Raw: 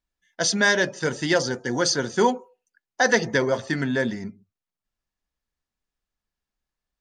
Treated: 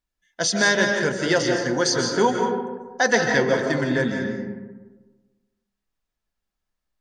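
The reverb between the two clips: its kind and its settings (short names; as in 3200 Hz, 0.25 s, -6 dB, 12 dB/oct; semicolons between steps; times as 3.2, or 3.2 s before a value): digital reverb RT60 1.3 s, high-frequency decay 0.4×, pre-delay 0.11 s, DRR 2 dB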